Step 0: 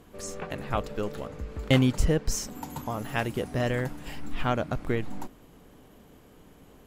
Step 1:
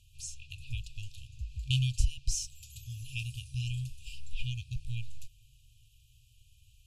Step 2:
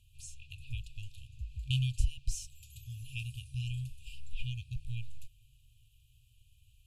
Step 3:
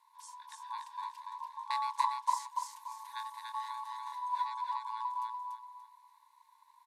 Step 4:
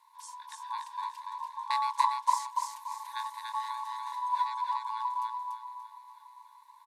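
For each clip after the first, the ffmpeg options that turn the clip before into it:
-af "lowpass=f=11k:w=0.5412,lowpass=f=11k:w=1.3066,afftfilt=real='re*(1-between(b*sr/4096,130,2400))':imag='im*(1-between(b*sr/4096,130,2400))':win_size=4096:overlap=0.75,volume=-2dB"
-af "equalizer=f=5.6k:w=1.4:g=-8,volume=-2dB"
-af "aecho=1:1:289|578|867|1156:0.708|0.219|0.068|0.0211,aeval=exprs='val(0)*sin(2*PI*990*n/s)':c=same,volume=-1.5dB"
-af "aecho=1:1:602|1204|1806|2408:0.126|0.0667|0.0354|0.0187,volume=4.5dB"

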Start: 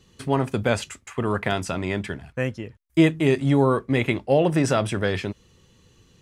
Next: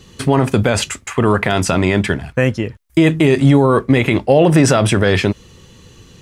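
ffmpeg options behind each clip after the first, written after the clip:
-af "alimiter=level_in=14.5dB:limit=-1dB:release=50:level=0:latency=1,volume=-1dB"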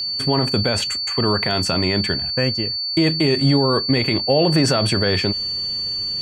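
-af "areverse,acompressor=mode=upward:threshold=-27dB:ratio=2.5,areverse,aeval=exprs='val(0)+0.158*sin(2*PI*4500*n/s)':c=same,volume=-6dB"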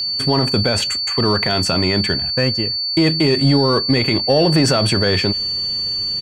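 -filter_complex "[0:a]acontrast=37,asplit=2[a][b];[b]adelay=160,highpass=300,lowpass=3.4k,asoftclip=type=hard:threshold=-12.5dB,volume=-30dB[c];[a][c]amix=inputs=2:normalize=0,volume=-2.5dB"

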